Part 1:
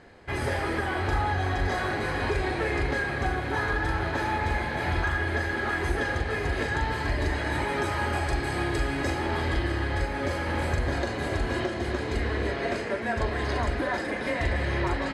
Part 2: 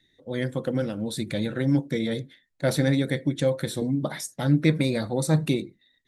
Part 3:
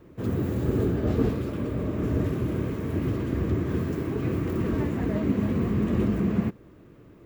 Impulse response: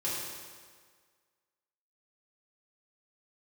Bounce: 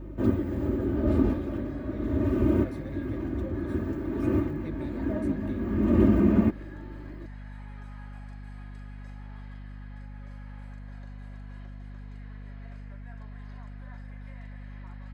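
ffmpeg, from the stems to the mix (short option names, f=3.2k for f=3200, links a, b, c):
-filter_complex "[0:a]highpass=1k,volume=-18dB[a];[1:a]flanger=delay=3:depth=8.1:regen=63:speed=1.7:shape=sinusoidal,volume=-14.5dB,asplit=2[b][c];[2:a]aecho=1:1:3.3:0.98,volume=3dB[d];[c]apad=whole_len=320249[e];[d][e]sidechaincompress=threshold=-48dB:ratio=8:attack=12:release=521[f];[a][b][f]amix=inputs=3:normalize=0,highshelf=f=2.2k:g=-12,aeval=exprs='val(0)+0.01*(sin(2*PI*50*n/s)+sin(2*PI*2*50*n/s)/2+sin(2*PI*3*50*n/s)/3+sin(2*PI*4*50*n/s)/4+sin(2*PI*5*50*n/s)/5)':c=same"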